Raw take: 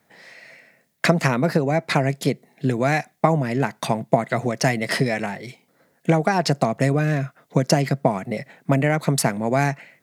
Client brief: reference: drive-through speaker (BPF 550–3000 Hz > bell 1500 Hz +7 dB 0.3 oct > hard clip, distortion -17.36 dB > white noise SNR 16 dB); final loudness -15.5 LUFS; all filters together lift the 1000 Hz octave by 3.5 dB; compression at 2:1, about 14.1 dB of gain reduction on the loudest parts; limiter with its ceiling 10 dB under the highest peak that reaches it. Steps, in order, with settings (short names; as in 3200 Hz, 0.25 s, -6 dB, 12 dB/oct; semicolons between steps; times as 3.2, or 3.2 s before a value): bell 1000 Hz +5.5 dB; compressor 2:1, threshold -37 dBFS; limiter -22 dBFS; BPF 550–3000 Hz; bell 1500 Hz +7 dB 0.3 oct; hard clip -27.5 dBFS; white noise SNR 16 dB; gain +22.5 dB